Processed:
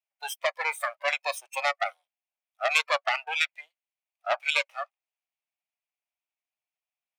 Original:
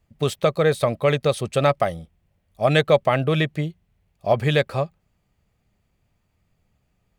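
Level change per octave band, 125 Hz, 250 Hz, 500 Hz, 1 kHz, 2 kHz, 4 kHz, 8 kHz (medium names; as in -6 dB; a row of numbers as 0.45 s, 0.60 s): under -40 dB, under -40 dB, -14.0 dB, -4.5 dB, +0.5 dB, -2.0 dB, no reading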